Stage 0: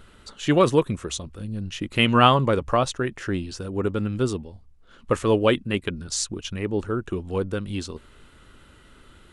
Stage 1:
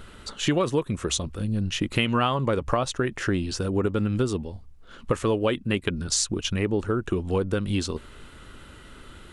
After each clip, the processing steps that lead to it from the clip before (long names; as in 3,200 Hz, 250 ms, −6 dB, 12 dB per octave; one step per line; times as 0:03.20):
downward compressor 6 to 1, threshold −26 dBFS, peak gain reduction 15 dB
level +5.5 dB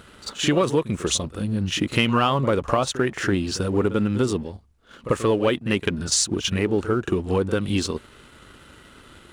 high-pass filter 98 Hz 6 dB per octave
leveller curve on the samples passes 1
echo ahead of the sound 43 ms −13 dB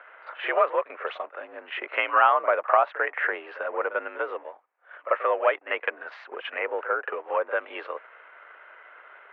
single-sideband voice off tune +59 Hz 560–2,200 Hz
level +3.5 dB